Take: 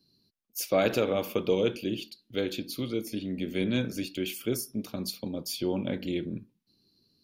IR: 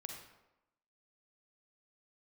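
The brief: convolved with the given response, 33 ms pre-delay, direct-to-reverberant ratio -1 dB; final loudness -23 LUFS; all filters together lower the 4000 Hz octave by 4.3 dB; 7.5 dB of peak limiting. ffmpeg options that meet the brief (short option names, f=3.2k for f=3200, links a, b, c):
-filter_complex "[0:a]equalizer=f=4k:t=o:g=-5.5,alimiter=limit=-21dB:level=0:latency=1,asplit=2[a][b];[1:a]atrim=start_sample=2205,adelay=33[c];[b][c]afir=irnorm=-1:irlink=0,volume=4dB[d];[a][d]amix=inputs=2:normalize=0,volume=6.5dB"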